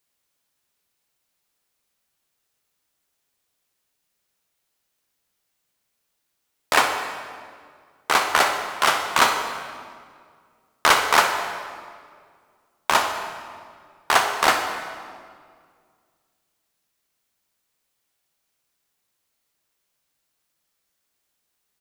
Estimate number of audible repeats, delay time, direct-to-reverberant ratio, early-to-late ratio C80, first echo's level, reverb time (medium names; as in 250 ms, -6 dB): 1, 61 ms, 4.5 dB, 7.0 dB, -13.0 dB, 2.0 s